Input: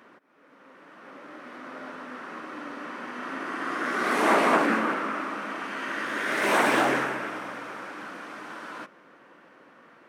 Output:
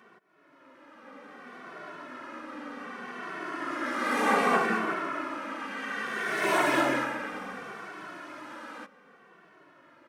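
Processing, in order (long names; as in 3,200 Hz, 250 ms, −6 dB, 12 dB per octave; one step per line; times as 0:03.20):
0:07.32–0:07.72: low-shelf EQ 140 Hz +11 dB
barber-pole flanger 2.2 ms −0.65 Hz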